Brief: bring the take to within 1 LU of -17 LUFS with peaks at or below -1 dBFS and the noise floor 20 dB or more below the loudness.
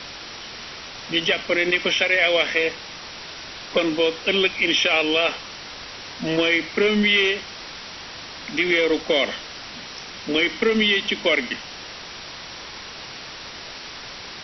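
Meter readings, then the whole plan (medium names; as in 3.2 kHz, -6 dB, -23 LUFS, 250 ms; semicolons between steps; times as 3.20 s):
noise floor -37 dBFS; noise floor target -40 dBFS; loudness -20.0 LUFS; peak level -6.0 dBFS; loudness target -17.0 LUFS
-> noise reduction 6 dB, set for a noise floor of -37 dBFS; trim +3 dB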